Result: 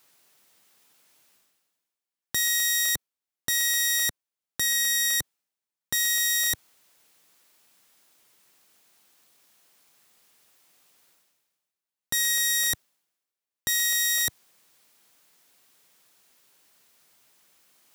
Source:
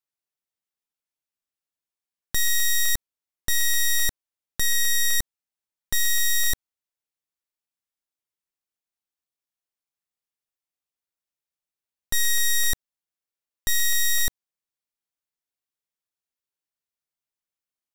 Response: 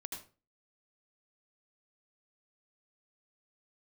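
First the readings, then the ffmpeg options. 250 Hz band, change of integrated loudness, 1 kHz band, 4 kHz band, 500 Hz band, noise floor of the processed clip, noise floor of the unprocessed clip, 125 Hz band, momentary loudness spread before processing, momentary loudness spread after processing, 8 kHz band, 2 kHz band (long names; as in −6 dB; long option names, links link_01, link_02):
−0.5 dB, 0.0 dB, 0.0 dB, 0.0 dB, 0.0 dB, below −85 dBFS, below −85 dBFS, −7.0 dB, 9 LU, 9 LU, 0.0 dB, 0.0 dB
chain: -af "highpass=130,areverse,acompressor=mode=upward:threshold=-39dB:ratio=2.5,areverse"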